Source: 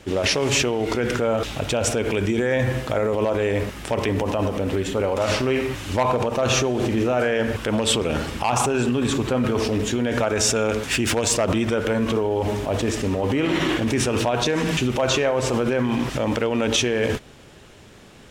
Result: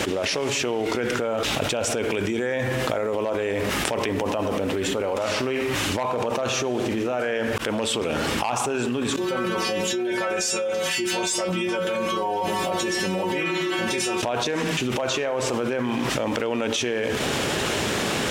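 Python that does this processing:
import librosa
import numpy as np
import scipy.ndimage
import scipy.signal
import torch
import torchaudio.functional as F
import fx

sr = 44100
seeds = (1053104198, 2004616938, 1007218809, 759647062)

y = fx.stiff_resonator(x, sr, f0_hz=180.0, decay_s=0.42, stiffness=0.002, at=(9.16, 14.23))
y = fx.edit(y, sr, fx.fade_in_span(start_s=7.58, length_s=0.88), tone=tone)
y = fx.highpass(y, sr, hz=250.0, slope=6)
y = fx.env_flatten(y, sr, amount_pct=100)
y = y * librosa.db_to_amplitude(-7.0)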